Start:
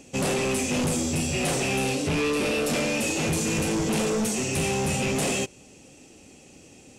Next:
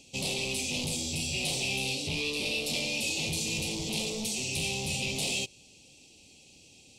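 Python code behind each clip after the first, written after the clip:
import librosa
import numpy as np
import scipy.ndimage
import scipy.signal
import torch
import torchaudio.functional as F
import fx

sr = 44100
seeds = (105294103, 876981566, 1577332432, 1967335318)

y = fx.curve_eq(x, sr, hz=(120.0, 270.0, 860.0, 1600.0, 2300.0, 4100.0, 6400.0), db=(0, -5, -4, -25, 3, 13, 3))
y = F.gain(torch.from_numpy(y), -7.5).numpy()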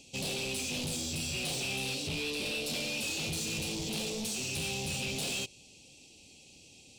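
y = 10.0 ** (-30.5 / 20.0) * np.tanh(x / 10.0 ** (-30.5 / 20.0))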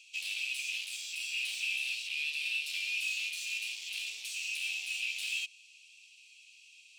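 y = fx.highpass_res(x, sr, hz=2500.0, q=3.8)
y = F.gain(torch.from_numpy(y), -7.0).numpy()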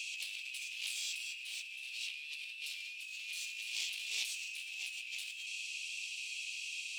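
y = fx.over_compress(x, sr, threshold_db=-48.0, ratio=-1.0)
y = F.gain(torch.from_numpy(y), 5.0).numpy()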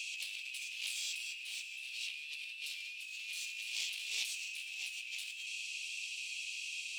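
y = x + 10.0 ** (-17.0 / 20.0) * np.pad(x, (int(645 * sr / 1000.0), 0))[:len(x)]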